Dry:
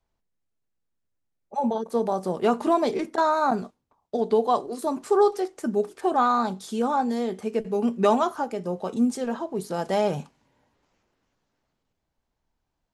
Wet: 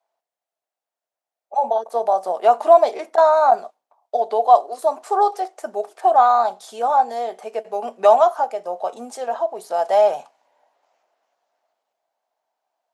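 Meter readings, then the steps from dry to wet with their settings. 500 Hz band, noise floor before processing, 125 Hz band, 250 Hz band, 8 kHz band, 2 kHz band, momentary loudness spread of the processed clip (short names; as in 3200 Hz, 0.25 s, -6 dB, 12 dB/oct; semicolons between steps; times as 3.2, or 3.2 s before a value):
+6.5 dB, -80 dBFS, under -20 dB, -14.0 dB, n/a, +1.5 dB, 14 LU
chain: resonant high-pass 680 Hz, resonance Q 4.9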